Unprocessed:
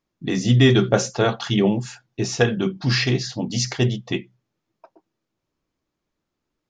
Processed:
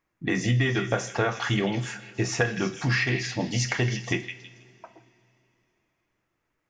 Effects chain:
octave-band graphic EQ 250/1,000/2,000/4,000 Hz −3/+3/+9/−8 dB
downward compressor 6 to 1, threshold −22 dBFS, peak gain reduction 12 dB
echo through a band-pass that steps 161 ms, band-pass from 2,800 Hz, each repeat 0.7 octaves, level −6 dB
coupled-rooms reverb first 0.4 s, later 3.3 s, from −18 dB, DRR 9.5 dB

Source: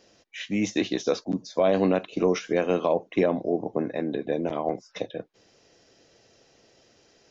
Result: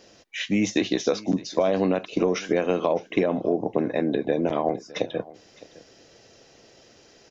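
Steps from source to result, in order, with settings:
downward compressor, threshold −24 dBFS, peak gain reduction 7.5 dB
on a send: single-tap delay 611 ms −20.5 dB
on the sum: level +6 dB

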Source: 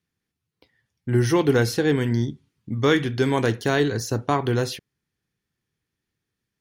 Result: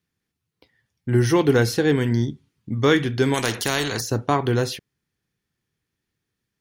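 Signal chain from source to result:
0:03.34–0:04.01: every bin compressed towards the loudest bin 2 to 1
level +1.5 dB

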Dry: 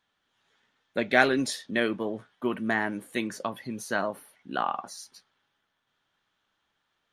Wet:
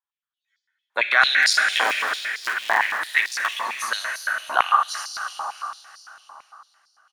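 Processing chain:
0:01.42–0:03.62: sub-harmonics by changed cycles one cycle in 3, muted
repeating echo 330 ms, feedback 57%, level −14.5 dB
noise gate −55 dBFS, range −14 dB
noise reduction from a noise print of the clip's start 18 dB
convolution reverb RT60 3.9 s, pre-delay 26 ms, DRR 2.5 dB
boost into a limiter +12 dB
high-pass on a step sequencer 8.9 Hz 970–4,700 Hz
level −5.5 dB

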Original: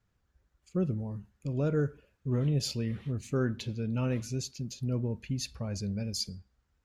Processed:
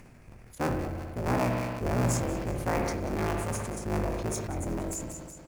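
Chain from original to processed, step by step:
sub-harmonics by changed cycles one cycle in 3, inverted
mains-hum notches 60/120 Hz
double-tracking delay 31 ms −11.5 dB
speed change +25%
delay with a high-pass on its return 185 ms, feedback 44%, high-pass 1,400 Hz, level −12 dB
spring reverb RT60 1.2 s, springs 58 ms, chirp 55 ms, DRR 6 dB
upward compression, threshold −35 dBFS
high-shelf EQ 5,600 Hz −6 dB
floating-point word with a short mantissa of 4 bits
parametric band 3,000 Hz −11.5 dB 0.43 octaves
formants moved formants +3 semitones
level that may fall only so fast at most 31 dB per second

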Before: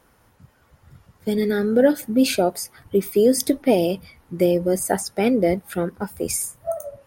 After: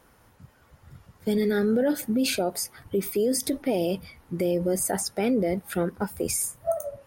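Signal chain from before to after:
brickwall limiter −16.5 dBFS, peak gain reduction 11.5 dB

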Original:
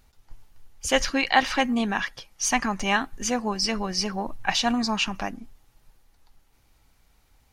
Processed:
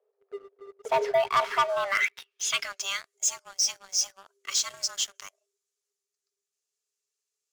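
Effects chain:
frequency shifter +390 Hz
band-pass filter sweep 620 Hz → 7,000 Hz, 0:01.15–0:03.03
leveller curve on the samples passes 3
level −3.5 dB

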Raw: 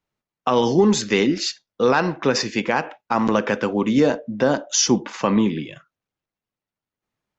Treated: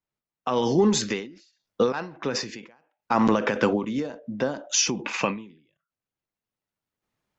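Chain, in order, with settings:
0:04.74–0:05.46: parametric band 2,500 Hz +14.5 dB 0.25 octaves
in parallel at +1 dB: brickwall limiter −14 dBFS, peak gain reduction 8 dB
on the sum: shaped tremolo saw up 0.52 Hz, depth 80%
every ending faded ahead of time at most 110 dB per second
level −2.5 dB

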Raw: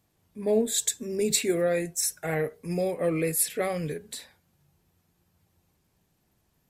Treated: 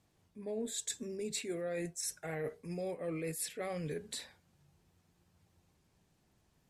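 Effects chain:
low-pass filter 9,300 Hz 12 dB per octave
reversed playback
downward compressor 6 to 1, threshold −35 dBFS, peak gain reduction 15.5 dB
reversed playback
level −1.5 dB

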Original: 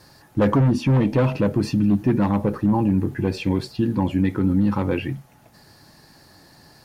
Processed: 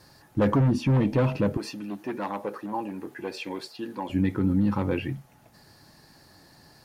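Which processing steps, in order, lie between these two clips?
0:01.57–0:04.10: high-pass filter 470 Hz 12 dB per octave
level −4 dB

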